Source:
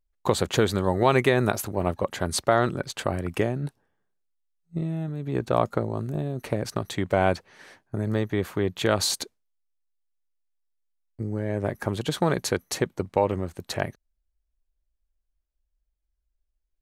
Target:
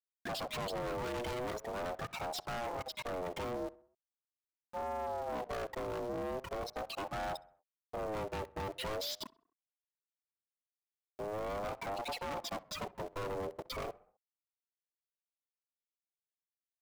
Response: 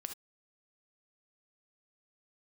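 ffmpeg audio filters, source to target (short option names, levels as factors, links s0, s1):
-filter_complex "[0:a]acrossover=split=5500[s0][s1];[s1]acompressor=threshold=0.00891:ratio=4:attack=1:release=60[s2];[s0][s2]amix=inputs=2:normalize=0,afftfilt=real='re*gte(hypot(re,im),0.0355)':imag='im*gte(hypot(re,im),0.0355)':win_size=1024:overlap=0.75,acrossover=split=300|3000[s3][s4][s5];[s4]acompressor=threshold=0.0708:ratio=10[s6];[s3][s6][s5]amix=inputs=3:normalize=0,aeval=exprs='0.299*(cos(1*acos(clip(val(0)/0.299,-1,1)))-cos(1*PI/2))+0.0075*(cos(2*acos(clip(val(0)/0.299,-1,1)))-cos(2*PI/2))+0.00188*(cos(6*acos(clip(val(0)/0.299,-1,1)))-cos(6*PI/2))':c=same,aeval=exprs='val(0)*gte(abs(val(0)),0.00447)':c=same,aeval=exprs='(tanh(100*val(0)+0.3)-tanh(0.3))/100':c=same,asplit=2[s7][s8];[s8]adelay=65,lowpass=f=2000:p=1,volume=0.1,asplit=2[s9][s10];[s10]adelay=65,lowpass=f=2000:p=1,volume=0.51,asplit=2[s11][s12];[s12]adelay=65,lowpass=f=2000:p=1,volume=0.51,asplit=2[s13][s14];[s14]adelay=65,lowpass=f=2000:p=1,volume=0.51[s15];[s7][s9][s11][s13][s15]amix=inputs=5:normalize=0,aeval=exprs='val(0)*sin(2*PI*600*n/s+600*0.2/0.41*sin(2*PI*0.41*n/s))':c=same,volume=1.78"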